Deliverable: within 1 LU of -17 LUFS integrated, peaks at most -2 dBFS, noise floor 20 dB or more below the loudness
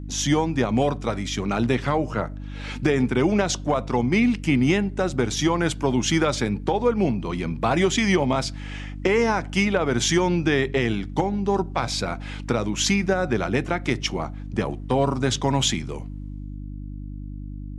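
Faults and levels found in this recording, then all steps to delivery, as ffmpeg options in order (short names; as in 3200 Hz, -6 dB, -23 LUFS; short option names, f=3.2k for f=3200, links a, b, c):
hum 50 Hz; harmonics up to 300 Hz; hum level -32 dBFS; loudness -23.0 LUFS; peak -7.0 dBFS; loudness target -17.0 LUFS
-> -af "bandreject=f=50:t=h:w=4,bandreject=f=100:t=h:w=4,bandreject=f=150:t=h:w=4,bandreject=f=200:t=h:w=4,bandreject=f=250:t=h:w=4,bandreject=f=300:t=h:w=4"
-af "volume=6dB,alimiter=limit=-2dB:level=0:latency=1"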